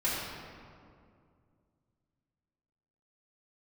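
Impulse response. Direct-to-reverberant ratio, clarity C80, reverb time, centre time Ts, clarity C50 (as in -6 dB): -10.5 dB, 0.5 dB, 2.3 s, 112 ms, -1.0 dB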